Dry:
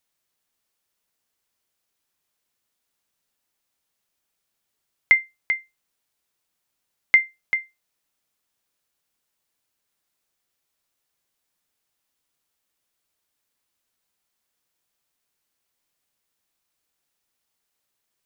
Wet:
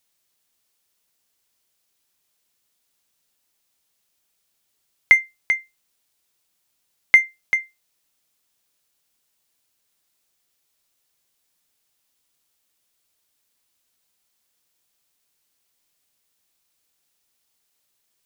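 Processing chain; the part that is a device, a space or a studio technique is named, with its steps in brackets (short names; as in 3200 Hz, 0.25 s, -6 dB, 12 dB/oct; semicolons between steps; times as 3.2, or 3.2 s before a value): exciter from parts (in parallel at -4.5 dB: HPF 2200 Hz 12 dB/oct + soft clip -29.5 dBFS, distortion -3 dB); on the sum: gain +3 dB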